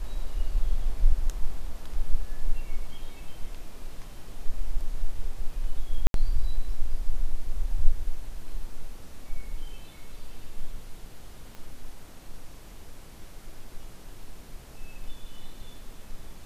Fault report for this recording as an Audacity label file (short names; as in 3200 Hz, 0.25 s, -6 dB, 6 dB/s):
6.070000	6.140000	gap 72 ms
11.550000	11.550000	pop -28 dBFS